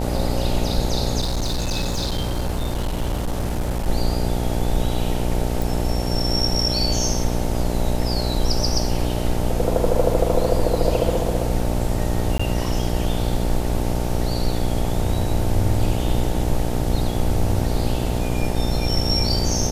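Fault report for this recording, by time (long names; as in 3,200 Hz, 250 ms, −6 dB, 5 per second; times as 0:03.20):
mains buzz 60 Hz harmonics 15 −24 dBFS
0:01.20–0:03.89: clipping −19 dBFS
0:05.62: click
0:12.38–0:12.39: drop-out 15 ms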